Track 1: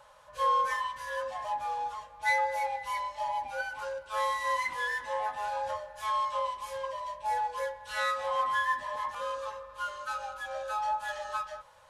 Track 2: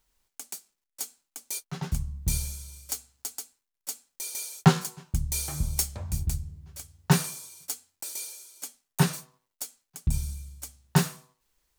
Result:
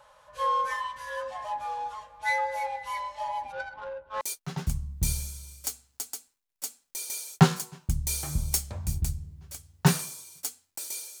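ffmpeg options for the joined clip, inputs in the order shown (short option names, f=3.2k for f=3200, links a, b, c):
-filter_complex "[0:a]asplit=3[a][b][c];[a]afade=t=out:st=3.51:d=0.02[d];[b]adynamicsmooth=sensitivity=3:basefreq=770,afade=t=in:st=3.51:d=0.02,afade=t=out:st=4.21:d=0.02[e];[c]afade=t=in:st=4.21:d=0.02[f];[d][e][f]amix=inputs=3:normalize=0,apad=whole_dur=11.2,atrim=end=11.2,atrim=end=4.212[g];[1:a]atrim=start=1.458:end=8.45[h];[g][h]acrossfade=d=0.004:c1=hsin:c2=hsin"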